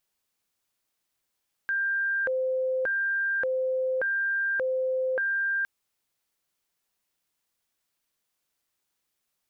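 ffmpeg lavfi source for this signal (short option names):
-f lavfi -i "aevalsrc='0.0631*sin(2*PI*(1054*t+536/0.86*(0.5-abs(mod(0.86*t,1)-0.5))))':d=3.96:s=44100"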